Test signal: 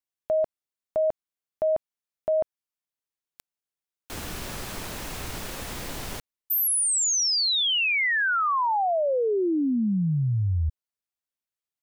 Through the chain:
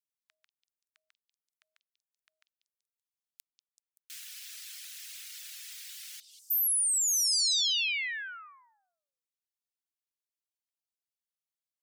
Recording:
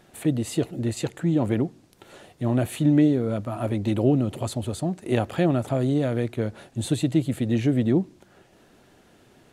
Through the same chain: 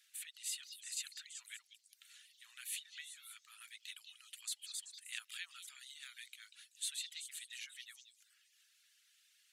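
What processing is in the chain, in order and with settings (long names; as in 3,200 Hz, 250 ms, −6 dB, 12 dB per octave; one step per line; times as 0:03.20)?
Bessel high-pass filter 3,000 Hz, order 8
echo through a band-pass that steps 191 ms, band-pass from 4,100 Hz, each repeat 0.7 octaves, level −5 dB
reverb reduction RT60 0.62 s
level −3.5 dB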